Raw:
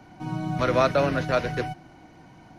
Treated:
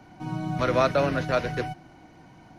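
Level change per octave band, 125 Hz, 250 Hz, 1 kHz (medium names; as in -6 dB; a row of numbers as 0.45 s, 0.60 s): -1.0 dB, -1.0 dB, -1.0 dB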